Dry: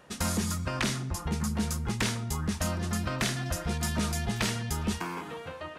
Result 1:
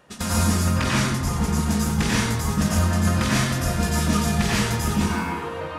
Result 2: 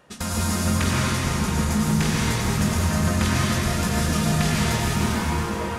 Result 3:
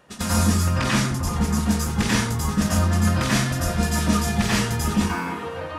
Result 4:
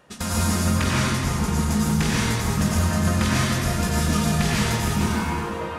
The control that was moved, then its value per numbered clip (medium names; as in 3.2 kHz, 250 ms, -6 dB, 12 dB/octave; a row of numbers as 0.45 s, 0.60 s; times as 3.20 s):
plate-style reverb, RT60: 1.1 s, 5.3 s, 0.52 s, 2.5 s